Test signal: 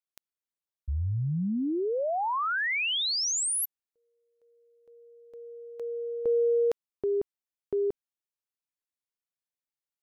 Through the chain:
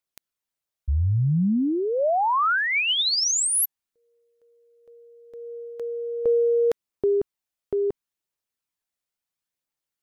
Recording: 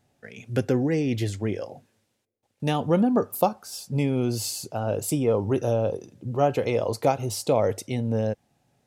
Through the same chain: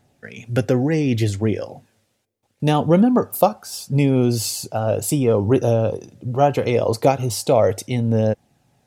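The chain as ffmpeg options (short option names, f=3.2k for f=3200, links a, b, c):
-af "aphaser=in_gain=1:out_gain=1:delay=1.7:decay=0.24:speed=0.72:type=triangular,volume=5.5dB"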